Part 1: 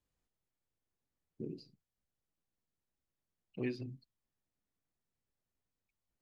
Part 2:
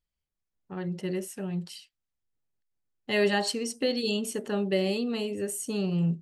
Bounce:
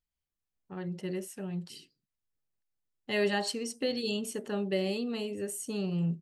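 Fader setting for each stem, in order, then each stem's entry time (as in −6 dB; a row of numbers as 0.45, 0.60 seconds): −19.0, −4.0 decibels; 0.30, 0.00 seconds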